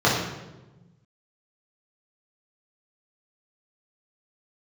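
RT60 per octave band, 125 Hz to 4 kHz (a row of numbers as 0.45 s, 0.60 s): 1.9 s, 1.8 s, 1.2 s, 0.95 s, 0.85 s, 0.80 s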